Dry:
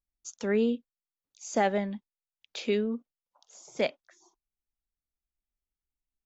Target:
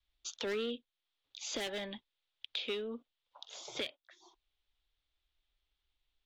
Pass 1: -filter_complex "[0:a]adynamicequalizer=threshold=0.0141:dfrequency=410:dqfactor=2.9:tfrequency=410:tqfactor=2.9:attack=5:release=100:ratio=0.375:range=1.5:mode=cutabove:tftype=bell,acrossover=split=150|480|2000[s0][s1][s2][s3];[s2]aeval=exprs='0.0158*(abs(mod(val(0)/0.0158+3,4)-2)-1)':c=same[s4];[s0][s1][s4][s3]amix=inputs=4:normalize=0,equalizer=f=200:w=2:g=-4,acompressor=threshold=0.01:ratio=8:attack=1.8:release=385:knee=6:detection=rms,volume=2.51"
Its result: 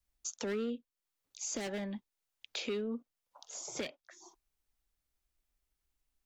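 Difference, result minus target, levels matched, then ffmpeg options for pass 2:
4 kHz band -6.0 dB; 250 Hz band +5.0 dB
-filter_complex "[0:a]adynamicequalizer=threshold=0.0141:dfrequency=410:dqfactor=2.9:tfrequency=410:tqfactor=2.9:attack=5:release=100:ratio=0.375:range=1.5:mode=cutabove:tftype=bell,lowpass=f=3500:t=q:w=4.2,acrossover=split=150|480|2000[s0][s1][s2][s3];[s2]aeval=exprs='0.0158*(abs(mod(val(0)/0.0158+3,4)-2)-1)':c=same[s4];[s0][s1][s4][s3]amix=inputs=4:normalize=0,equalizer=f=200:w=2:g=-13,acompressor=threshold=0.01:ratio=8:attack=1.8:release=385:knee=6:detection=rms,volume=2.51"

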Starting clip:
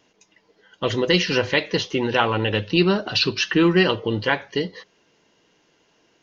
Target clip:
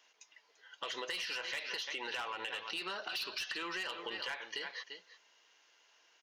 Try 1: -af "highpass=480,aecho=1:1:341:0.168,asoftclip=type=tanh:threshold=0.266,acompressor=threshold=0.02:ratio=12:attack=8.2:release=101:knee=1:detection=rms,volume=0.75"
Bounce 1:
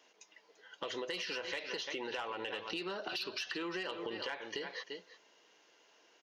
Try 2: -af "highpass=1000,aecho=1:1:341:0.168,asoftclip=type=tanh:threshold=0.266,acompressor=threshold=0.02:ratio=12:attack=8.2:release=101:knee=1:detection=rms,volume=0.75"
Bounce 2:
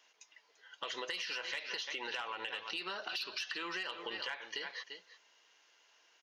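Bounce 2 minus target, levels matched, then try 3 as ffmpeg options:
saturation: distortion -8 dB
-af "highpass=1000,aecho=1:1:341:0.168,asoftclip=type=tanh:threshold=0.119,acompressor=threshold=0.02:ratio=12:attack=8.2:release=101:knee=1:detection=rms,volume=0.75"

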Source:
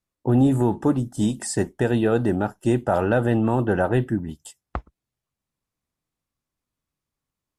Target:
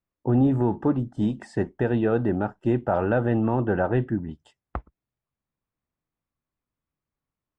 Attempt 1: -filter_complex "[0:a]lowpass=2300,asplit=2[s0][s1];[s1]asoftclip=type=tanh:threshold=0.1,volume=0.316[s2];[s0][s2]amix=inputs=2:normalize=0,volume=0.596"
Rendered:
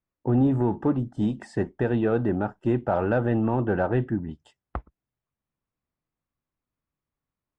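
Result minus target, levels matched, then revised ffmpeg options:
saturation: distortion +15 dB
-filter_complex "[0:a]lowpass=2300,asplit=2[s0][s1];[s1]asoftclip=type=tanh:threshold=0.398,volume=0.316[s2];[s0][s2]amix=inputs=2:normalize=0,volume=0.596"

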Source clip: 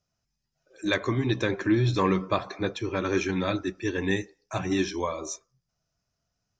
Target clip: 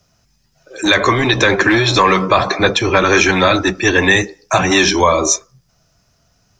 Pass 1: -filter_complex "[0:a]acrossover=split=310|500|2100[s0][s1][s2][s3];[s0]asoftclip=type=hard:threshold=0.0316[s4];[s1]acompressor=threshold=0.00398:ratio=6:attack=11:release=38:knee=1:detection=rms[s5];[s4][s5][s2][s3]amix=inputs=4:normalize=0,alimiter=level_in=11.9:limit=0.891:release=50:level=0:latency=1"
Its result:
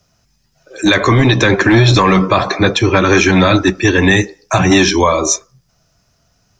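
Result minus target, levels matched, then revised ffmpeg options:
hard clipper: distortion -6 dB
-filter_complex "[0:a]acrossover=split=310|500|2100[s0][s1][s2][s3];[s0]asoftclip=type=hard:threshold=0.00891[s4];[s1]acompressor=threshold=0.00398:ratio=6:attack=11:release=38:knee=1:detection=rms[s5];[s4][s5][s2][s3]amix=inputs=4:normalize=0,alimiter=level_in=11.9:limit=0.891:release=50:level=0:latency=1"

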